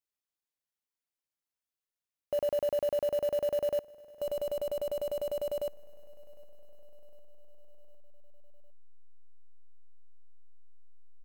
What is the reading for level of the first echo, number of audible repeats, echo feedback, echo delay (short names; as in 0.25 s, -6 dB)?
-23.0 dB, 3, 59%, 0.756 s